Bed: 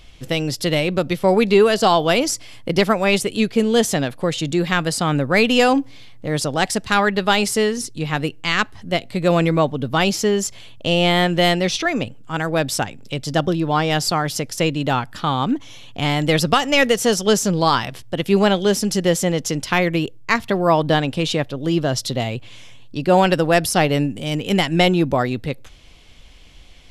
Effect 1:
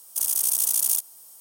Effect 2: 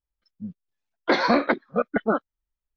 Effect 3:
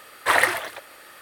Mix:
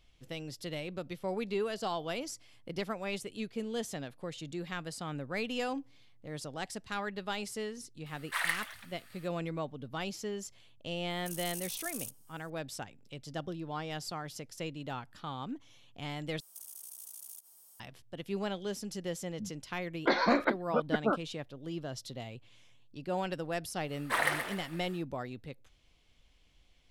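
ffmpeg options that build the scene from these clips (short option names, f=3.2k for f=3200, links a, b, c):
-filter_complex "[3:a]asplit=2[a][b];[1:a]asplit=2[c][d];[0:a]volume=-20dB[e];[a]highpass=1.4k[f];[c]highshelf=f=9.2k:g=-5.5[g];[d]acompressor=threshold=-33dB:ratio=6:attack=3.2:release=140:knee=1:detection=peak[h];[b]aecho=1:1:125|250|375|500:0.355|0.131|0.0486|0.018[i];[e]asplit=2[j][k];[j]atrim=end=16.404[l];[h]atrim=end=1.4,asetpts=PTS-STARTPTS,volume=-11dB[m];[k]atrim=start=17.796[n];[f]atrim=end=1.21,asetpts=PTS-STARTPTS,volume=-11.5dB,afade=t=in:d=0.004:c=hsin,afade=t=out:st=1.206:d=0.004:c=hsin,adelay=8060[o];[g]atrim=end=1.4,asetpts=PTS-STARTPTS,volume=-16dB,afade=t=in:d=0.004:c=hsin,afade=t=out:st=1.396:d=0.004:c=hsin,adelay=11100[p];[2:a]atrim=end=2.76,asetpts=PTS-STARTPTS,volume=-7dB,afade=t=in:d=0.004:c=hsin,afade=t=out:st=2.756:d=0.004:c=hsin,adelay=18980[q];[i]atrim=end=1.21,asetpts=PTS-STARTPTS,volume=-11.5dB,afade=t=in:d=0.1,afade=t=out:st=1.11:d=0.1,adelay=23840[r];[l][m]acrossfade=d=0.004:c1=hsin:c2=hsin[s];[s][n]acrossfade=d=0.004:c1=hsin:c2=hsin[t];[t][o][p][q][r]amix=inputs=5:normalize=0"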